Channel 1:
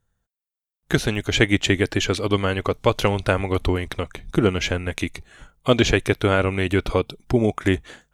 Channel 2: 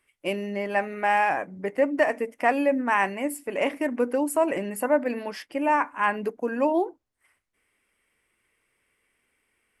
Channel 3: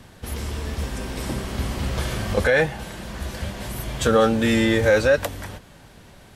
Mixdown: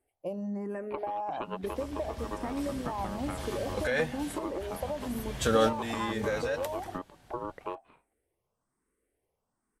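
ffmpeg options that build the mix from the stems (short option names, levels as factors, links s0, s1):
-filter_complex "[0:a]lowpass=f=2700:w=0.5412,lowpass=f=2700:w=1.3066,aeval=exprs='val(0)*sin(2*PI*730*n/s)':c=same,volume=0.251,asplit=2[s0][s1];[1:a]firequalizer=gain_entry='entry(740,0);entry(2200,-16);entry(6200,3)':delay=0.05:min_phase=1,acompressor=threshold=0.0562:ratio=6,asplit=2[s2][s3];[s3]afreqshift=1.1[s4];[s2][s4]amix=inputs=2:normalize=1,volume=1.19[s5];[2:a]adynamicequalizer=threshold=0.0158:dfrequency=2200:dqfactor=0.7:tfrequency=2200:tqfactor=0.7:attack=5:release=100:ratio=0.375:range=2:mode=boostabove:tftype=highshelf,adelay=1400,volume=0.501[s6];[s1]apad=whole_len=341839[s7];[s6][s7]sidechaincompress=threshold=0.0158:ratio=8:attack=22:release=1440[s8];[s0][s5]amix=inputs=2:normalize=0,highshelf=f=2100:g=-12,acompressor=threshold=0.0282:ratio=6,volume=1[s9];[s8][s9]amix=inputs=2:normalize=0"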